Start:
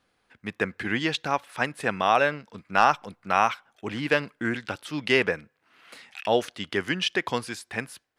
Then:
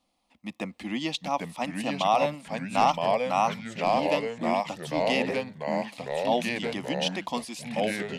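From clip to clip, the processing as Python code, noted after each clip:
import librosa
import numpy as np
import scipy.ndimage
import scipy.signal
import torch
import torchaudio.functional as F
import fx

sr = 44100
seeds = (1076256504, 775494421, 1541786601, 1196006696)

y = fx.fixed_phaser(x, sr, hz=420.0, stages=6)
y = fx.echo_pitch(y, sr, ms=723, semitones=-2, count=3, db_per_echo=-3.0)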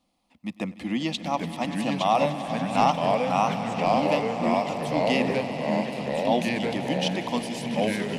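y = fx.peak_eq(x, sr, hz=130.0, db=6.0, octaves=2.7)
y = fx.echo_swell(y, sr, ms=97, loudest=5, wet_db=-16)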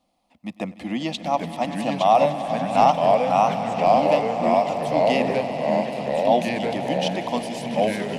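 y = fx.peak_eq(x, sr, hz=670.0, db=7.5, octaves=0.72)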